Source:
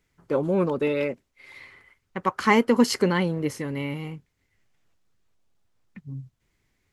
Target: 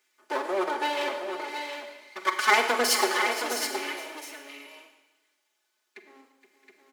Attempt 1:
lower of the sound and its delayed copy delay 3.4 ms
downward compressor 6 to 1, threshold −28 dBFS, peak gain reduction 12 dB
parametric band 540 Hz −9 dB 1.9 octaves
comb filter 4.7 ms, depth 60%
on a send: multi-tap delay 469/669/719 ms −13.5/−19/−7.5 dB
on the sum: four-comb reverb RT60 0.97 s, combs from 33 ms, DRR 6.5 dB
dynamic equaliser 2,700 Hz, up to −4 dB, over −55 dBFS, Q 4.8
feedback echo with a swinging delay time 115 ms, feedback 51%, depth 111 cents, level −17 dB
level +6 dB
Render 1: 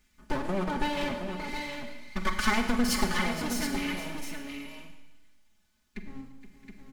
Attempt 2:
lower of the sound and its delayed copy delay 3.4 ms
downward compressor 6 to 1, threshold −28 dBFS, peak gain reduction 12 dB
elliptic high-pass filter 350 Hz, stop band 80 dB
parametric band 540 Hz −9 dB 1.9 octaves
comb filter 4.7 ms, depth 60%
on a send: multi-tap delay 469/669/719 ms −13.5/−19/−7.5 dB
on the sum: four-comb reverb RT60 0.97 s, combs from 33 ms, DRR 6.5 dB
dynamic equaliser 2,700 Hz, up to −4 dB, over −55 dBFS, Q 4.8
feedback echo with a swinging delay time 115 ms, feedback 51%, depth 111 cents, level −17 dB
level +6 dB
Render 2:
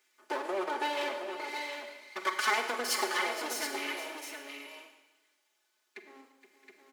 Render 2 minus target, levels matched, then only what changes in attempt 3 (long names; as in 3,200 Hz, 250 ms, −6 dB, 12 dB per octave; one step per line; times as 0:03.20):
downward compressor: peak gain reduction +12 dB
remove: downward compressor 6 to 1, threshold −28 dBFS, peak gain reduction 12 dB